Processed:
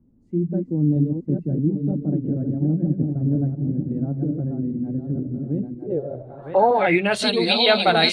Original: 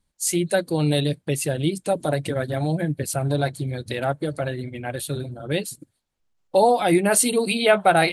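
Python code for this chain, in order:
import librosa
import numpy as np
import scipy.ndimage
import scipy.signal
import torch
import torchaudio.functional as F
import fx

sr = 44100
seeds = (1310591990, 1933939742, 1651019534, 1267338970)

y = fx.reverse_delay_fb(x, sr, ms=479, feedback_pct=55, wet_db=-4.5)
y = fx.dmg_noise_colour(y, sr, seeds[0], colour='pink', level_db=-57.0)
y = fx.filter_sweep_lowpass(y, sr, from_hz=250.0, to_hz=4100.0, start_s=5.63, end_s=7.26, q=4.1)
y = y * librosa.db_to_amplitude(-2.0)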